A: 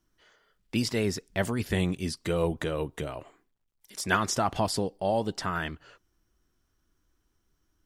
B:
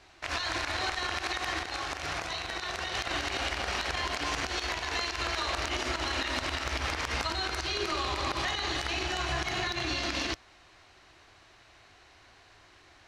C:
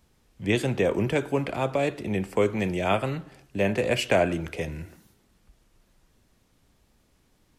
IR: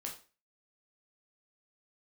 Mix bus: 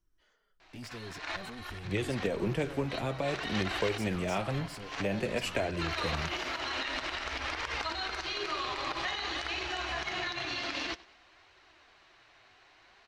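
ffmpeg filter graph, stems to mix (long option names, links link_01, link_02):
-filter_complex "[0:a]acompressor=threshold=-30dB:ratio=2,asoftclip=type=tanh:threshold=-31.5dB,volume=-6dB,asplit=2[link_01][link_02];[1:a]lowpass=3300,aemphasis=mode=production:type=bsi,adelay=600,volume=1dB,asplit=2[link_03][link_04];[link_04]volume=-21dB[link_05];[2:a]acompressor=threshold=-23dB:ratio=6,adelay=1450,volume=-1dB[link_06];[link_02]apad=whole_len=603132[link_07];[link_03][link_07]sidechaincompress=threshold=-54dB:ratio=8:attack=5.9:release=105[link_08];[link_05]aecho=0:1:95|190|285|380|475:1|0.37|0.137|0.0507|0.0187[link_09];[link_01][link_08][link_06][link_09]amix=inputs=4:normalize=0,lowshelf=frequency=61:gain=11.5,flanger=delay=1.8:depth=6.5:regen=-42:speed=0.52:shape=triangular"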